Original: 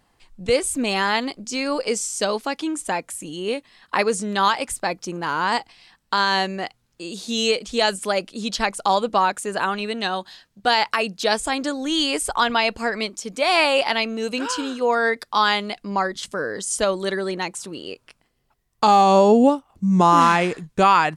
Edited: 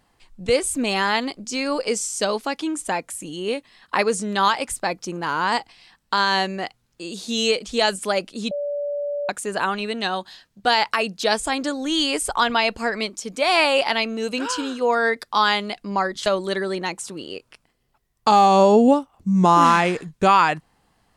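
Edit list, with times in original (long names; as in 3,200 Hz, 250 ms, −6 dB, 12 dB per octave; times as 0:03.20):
0:08.51–0:09.29: beep over 578 Hz −23 dBFS
0:16.26–0:16.82: remove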